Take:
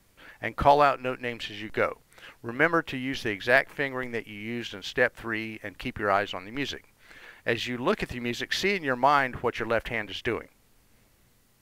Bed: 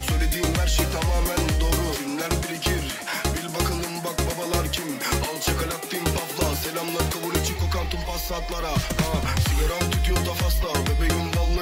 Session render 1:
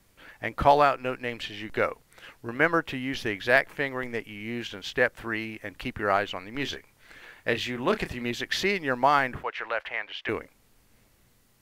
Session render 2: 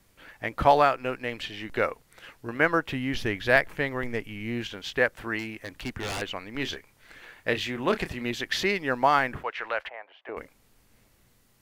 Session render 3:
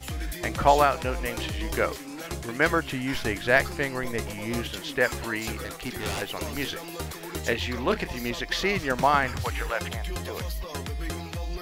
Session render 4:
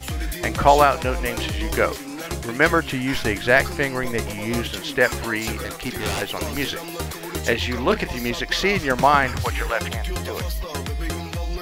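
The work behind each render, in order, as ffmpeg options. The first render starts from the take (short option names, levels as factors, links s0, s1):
-filter_complex "[0:a]asettb=1/sr,asplit=3[s0][s1][s2];[s0]atrim=end=6.554[s3];[s1]atrim=start=6.55:end=8.24,asetpts=PTS-STARTPTS,afade=t=in:d=0.004:c=qsin,afade=t=out:st=1.686:d=0.004:c=qsin,asplit=2[s4][s5];[s5]adelay=30,volume=0.282[s6];[s4][s6]amix=inputs=2:normalize=0,atrim=end_sample=74529[s7];[s2]atrim=start=8.236[s8];[s3][s7]acrossfade=d=0.004:c1=hsin:c2=qsin[s9];[s9][s8]acrossfade=d=0.004:c1=qsin:c2=hsin,asettb=1/sr,asplit=3[s10][s11][s12];[s10]atrim=end=9.434[s13];[s11]atrim=start=9.43:end=10.29,asetpts=PTS-STARTPTS,afade=t=in:d=0.004:c=qsin,afade=t=out:st=0.856:d=0.004:c=qsin,acrossover=split=570 4600:gain=0.0708 1 0.126[s14][s15][s16];[s14][s15][s16]amix=inputs=3:normalize=0[s17];[s12]atrim=start=10.286[s18];[s13][s17]acrossfade=d=0.004:c1=hsin:c2=qsin[s19];[s19][s18]acrossfade=d=0.004:c1=qsin:c2=hsin"
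-filter_complex "[0:a]asettb=1/sr,asplit=3[s0][s1][s2];[s0]atrim=end=2.924[s3];[s1]atrim=start=2.92:end=4.68,asetpts=PTS-STARTPTS,afade=t=in:d=0.004:c=qsin,afade=t=out:st=1.756:d=0.004:c=qsin,lowshelf=f=140:g=9.5[s4];[s2]atrim=start=4.676[s5];[s3][s4]acrossfade=d=0.004:c1=hsin:c2=qsin[s6];[s6][s5]acrossfade=d=0.004:c1=qsin:c2=hsin,asettb=1/sr,asplit=3[s7][s8][s9];[s7]atrim=end=5.394[s10];[s8]atrim=start=5.39:end=6.22,asetpts=PTS-STARTPTS,afade=t=in:d=0.004:c=qsin,afade=t=out:st=0.826:d=0.004:c=qsin,aeval=exprs='0.0473*(abs(mod(val(0)/0.0473+3,4)-2)-1)':c=same[s11];[s9]atrim=start=6.216[s12];[s10][s11]acrossfade=d=0.004:c1=hsin:c2=qsin[s13];[s13][s12]acrossfade=d=0.004:c1=qsin:c2=hsin,asplit=3[s14][s15][s16];[s14]afade=t=out:st=9.88:d=0.02[s17];[s15]bandpass=f=700:t=q:w=1.9,afade=t=in:st=9.88:d=0.02,afade=t=out:st=10.36:d=0.02[s18];[s16]afade=t=in:st=10.36:d=0.02[s19];[s17][s18][s19]amix=inputs=3:normalize=0"
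-filter_complex "[1:a]volume=0.299[s0];[0:a][s0]amix=inputs=2:normalize=0"
-af "volume=1.88,alimiter=limit=0.794:level=0:latency=1"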